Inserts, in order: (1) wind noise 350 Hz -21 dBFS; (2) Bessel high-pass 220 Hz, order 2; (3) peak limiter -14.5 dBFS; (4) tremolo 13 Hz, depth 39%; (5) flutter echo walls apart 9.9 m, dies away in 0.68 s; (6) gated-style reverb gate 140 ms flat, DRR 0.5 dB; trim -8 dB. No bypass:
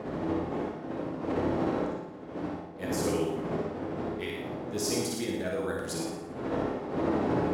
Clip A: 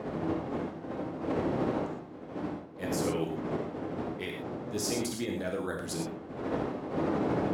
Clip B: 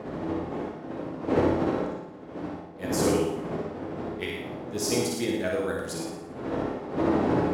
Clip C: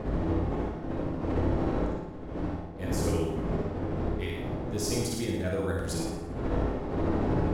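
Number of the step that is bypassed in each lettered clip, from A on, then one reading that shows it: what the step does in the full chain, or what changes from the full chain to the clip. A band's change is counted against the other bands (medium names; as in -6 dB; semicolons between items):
5, echo-to-direct 2.5 dB to -0.5 dB; 3, crest factor change +3.0 dB; 2, 125 Hz band +8.5 dB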